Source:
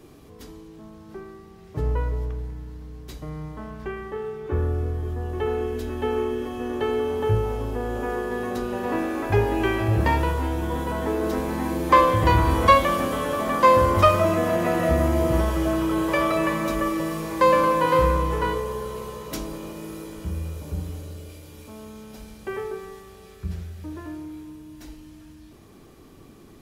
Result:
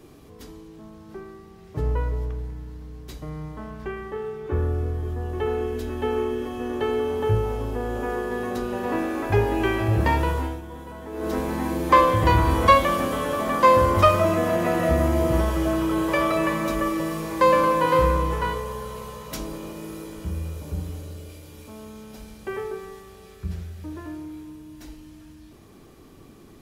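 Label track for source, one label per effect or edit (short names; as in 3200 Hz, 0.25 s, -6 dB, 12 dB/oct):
10.380000	11.350000	dip -11.5 dB, fades 0.24 s
18.330000	19.390000	bell 350 Hz -9 dB 0.63 oct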